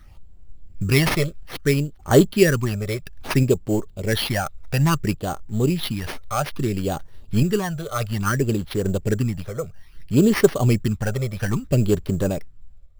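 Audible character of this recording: random-step tremolo; phasing stages 12, 0.6 Hz, lowest notch 280–2600 Hz; aliases and images of a low sample rate 7500 Hz, jitter 0%

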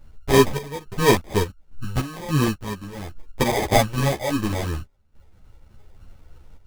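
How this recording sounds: phasing stages 12, 3 Hz, lowest notch 240–3200 Hz; aliases and images of a low sample rate 1400 Hz, jitter 0%; random-step tremolo, depth 90%; a shimmering, thickened sound

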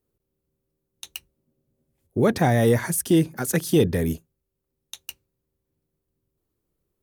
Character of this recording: noise floor -80 dBFS; spectral tilt -5.5 dB/oct

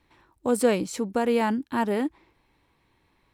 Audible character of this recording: noise floor -69 dBFS; spectral tilt -5.0 dB/oct

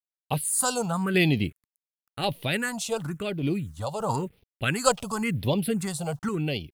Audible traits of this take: a quantiser's noise floor 10-bit, dither none; random-step tremolo 3.5 Hz; phasing stages 4, 0.95 Hz, lowest notch 300–1400 Hz

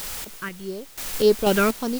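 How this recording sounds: phasing stages 4, 1.7 Hz, lowest notch 800–2600 Hz; a quantiser's noise floor 6-bit, dither triangular; random-step tremolo 4.1 Hz, depth 85%

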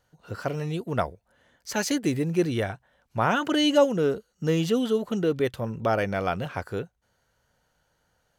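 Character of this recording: noise floor -72 dBFS; spectral tilt -4.5 dB/oct

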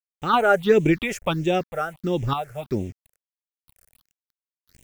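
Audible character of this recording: random-step tremolo 3 Hz, depth 80%; a quantiser's noise floor 10-bit, dither none; phasing stages 6, 1.5 Hz, lowest notch 250–1300 Hz

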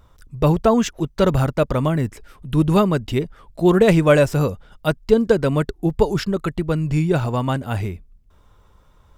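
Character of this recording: noise floor -54 dBFS; spectral tilt -6.0 dB/oct

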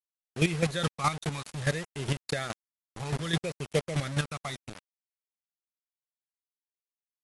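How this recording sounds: phasing stages 12, 0.61 Hz, lowest notch 510–1300 Hz; a quantiser's noise floor 6-bit, dither none; chopped level 4.8 Hz, depth 65%, duty 20%; AC-3

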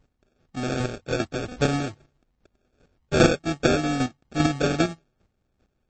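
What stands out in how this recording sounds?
a buzz of ramps at a fixed pitch in blocks of 16 samples; chopped level 2.5 Hz, depth 60%, duty 15%; aliases and images of a low sample rate 1000 Hz, jitter 0%; MP3

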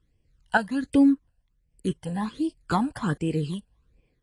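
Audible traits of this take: phasing stages 12, 1.3 Hz, lowest notch 360–1300 Hz; random-step tremolo; AAC

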